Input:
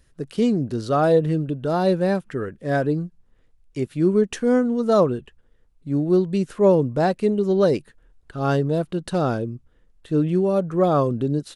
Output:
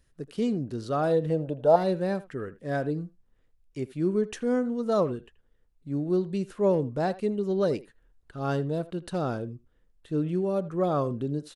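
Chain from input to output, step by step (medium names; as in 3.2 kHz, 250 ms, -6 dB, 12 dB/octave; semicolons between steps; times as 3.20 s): 1.30–1.76 s: high-order bell 680 Hz +14.5 dB 1.2 oct; speakerphone echo 80 ms, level -17 dB; trim -7.5 dB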